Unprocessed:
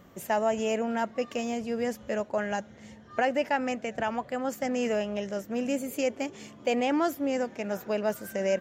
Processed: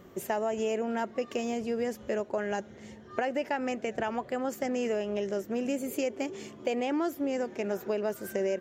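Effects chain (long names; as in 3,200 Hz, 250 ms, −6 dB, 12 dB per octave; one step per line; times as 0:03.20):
parametric band 380 Hz +11 dB 0.34 octaves
downward compressor 4 to 1, threshold −27 dBFS, peak gain reduction 7.5 dB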